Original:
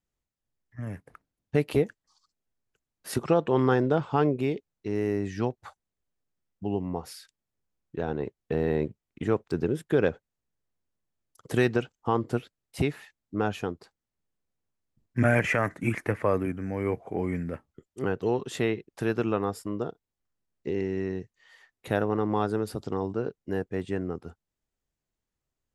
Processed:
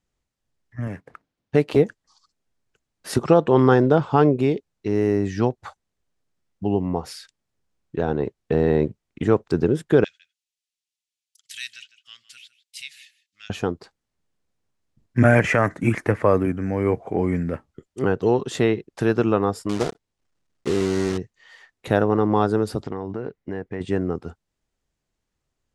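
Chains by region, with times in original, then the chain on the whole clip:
0.87–1.79 s: median filter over 5 samples + bass shelf 93 Hz -11.5 dB
10.04–13.50 s: inverse Chebyshev high-pass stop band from 990 Hz, stop band 50 dB + delay 155 ms -17.5 dB
19.69–21.19 s: block-companded coder 3-bit + low-pass 10 kHz
22.82–23.81 s: low-pass 2.7 kHz 6 dB/octave + peaking EQ 2 kHz +7.5 dB 0.4 oct + compression 4:1, threshold -33 dBFS
whole clip: low-pass 8.7 kHz 12 dB/octave; dynamic bell 2.4 kHz, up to -4 dB, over -48 dBFS, Q 1.4; trim +7.5 dB

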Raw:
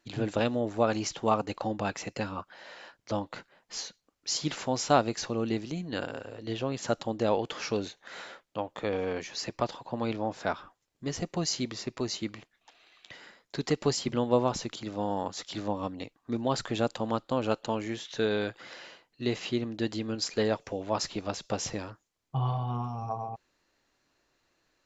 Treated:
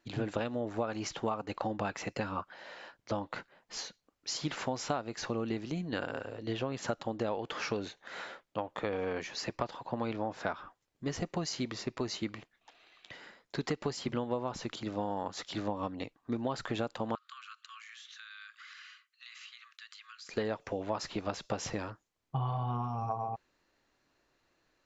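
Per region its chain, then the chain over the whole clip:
17.15–20.29 s: Chebyshev high-pass 1.1 kHz, order 10 + band-stop 5.2 kHz, Q 29 + compression 5:1, threshold -45 dBFS
whole clip: dynamic bell 1.4 kHz, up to +4 dB, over -44 dBFS, Q 0.75; compression 12:1, threshold -29 dBFS; treble shelf 4.5 kHz -6.5 dB

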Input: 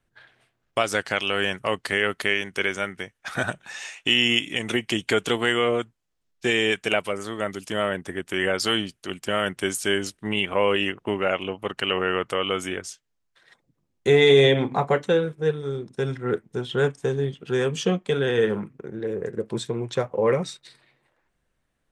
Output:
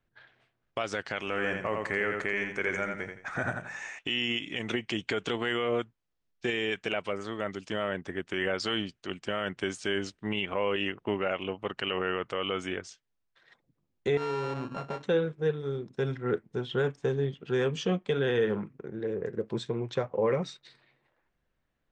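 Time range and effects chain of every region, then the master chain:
1.19–3.99 s: companding laws mixed up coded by mu + high-order bell 3.8 kHz -12 dB 1.1 oct + feedback delay 84 ms, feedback 29%, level -6 dB
14.17–15.03 s: sorted samples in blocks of 32 samples + treble shelf 2 kHz -11.5 dB + compression 2.5:1, threshold -30 dBFS
whole clip: peak limiter -13.5 dBFS; Bessel low-pass 4.6 kHz, order 8; trim -4 dB

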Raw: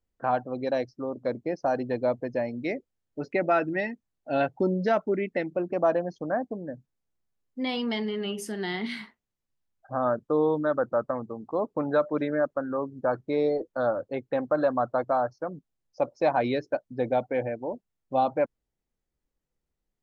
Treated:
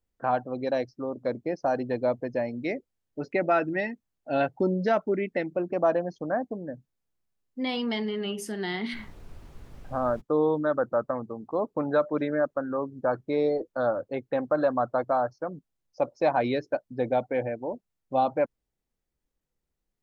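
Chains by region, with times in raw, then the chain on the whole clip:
8.93–10.20 s: distance through air 270 m + added noise brown -43 dBFS
whole clip: none

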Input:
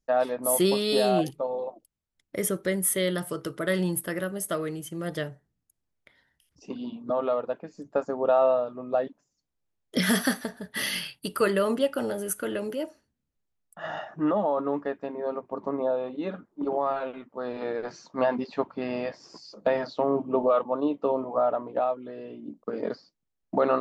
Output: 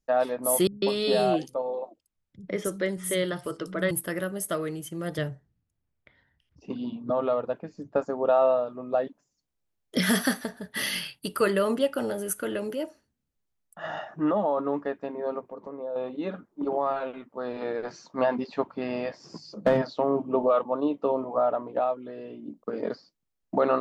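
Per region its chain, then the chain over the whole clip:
0.67–3.91 s: low-pass 7.5 kHz + three bands offset in time lows, mids, highs 150/210 ms, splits 160/5400 Hz
5.18–8.03 s: peaking EQ 84 Hz +9 dB 2 oct + level-controlled noise filter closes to 3 kHz, open at -25.5 dBFS
15.42–15.96 s: compression 2:1, threshold -45 dBFS + peaking EQ 490 Hz +10 dB 0.23 oct
19.24–19.82 s: peaking EQ 150 Hz +15 dB 2 oct + hard clipper -14 dBFS
whole clip: none

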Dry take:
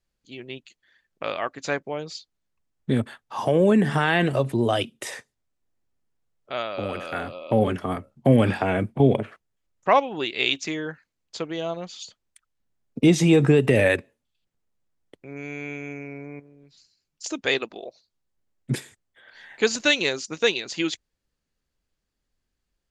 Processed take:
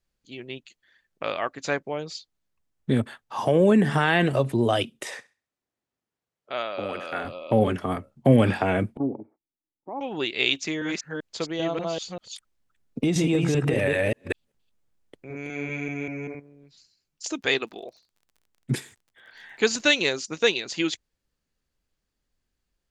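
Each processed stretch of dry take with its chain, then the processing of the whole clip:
5.03–7.25 s: high-pass 260 Hz 6 dB/octave + treble shelf 8.6 kHz -9.5 dB + thinning echo 65 ms, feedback 29%, high-pass 520 Hz, level -19.5 dB
8.97–10.01 s: cascade formant filter u + bass shelf 160 Hz -9.5 dB + loudspeaker Doppler distortion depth 0.22 ms
10.62–16.35 s: chunks repeated in reverse 195 ms, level -0.5 dB + compression 5:1, threshold -19 dBFS
17.32–19.79 s: peaking EQ 560 Hz -5.5 dB 0.31 oct + crackle 38 per s -46 dBFS
whole clip: none

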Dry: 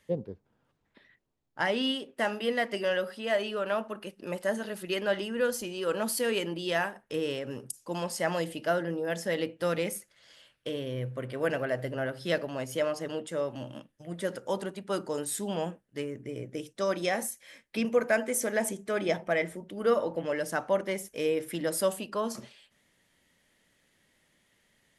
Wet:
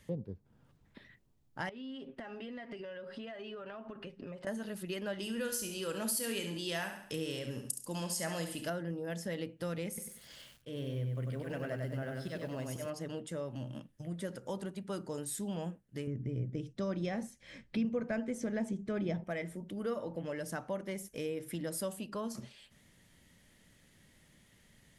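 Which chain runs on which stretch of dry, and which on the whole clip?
1.69–4.47 s: low-pass 3.2 kHz + comb 7.4 ms, depth 50% + compression, threshold -41 dBFS
5.20–8.70 s: treble shelf 2.8 kHz +10.5 dB + doubling 31 ms -12 dB + flutter echo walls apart 11.8 m, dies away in 0.49 s
9.88–12.90 s: slow attack 140 ms + bit-crushed delay 96 ms, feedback 35%, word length 10-bit, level -3.5 dB
16.07–19.24 s: low-pass 5.2 kHz + bass shelf 300 Hz +11.5 dB
whole clip: tone controls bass +11 dB, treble +3 dB; compression 2:1, threshold -47 dBFS; trim +1.5 dB

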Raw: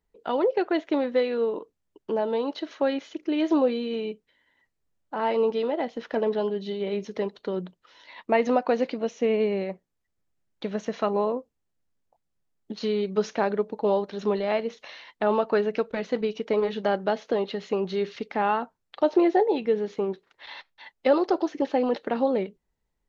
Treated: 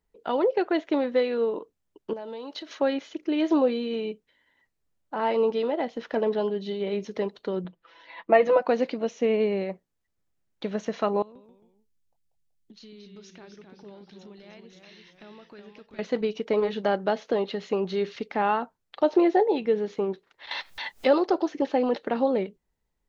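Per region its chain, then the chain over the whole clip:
2.13–2.79 s: compression 3:1, threshold -38 dBFS + treble shelf 2.4 kHz +7.5 dB
7.64–8.62 s: tone controls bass -3 dB, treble -14 dB + comb 6 ms, depth 96%
11.22–15.99 s: peaking EQ 700 Hz -15 dB 2.6 oct + compression 2.5:1, threshold -51 dBFS + ever faster or slower copies 134 ms, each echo -1 st, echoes 3, each echo -6 dB
20.51–21.20 s: treble shelf 4.5 kHz +6.5 dB + upward compressor, threshold -22 dBFS
whole clip: none

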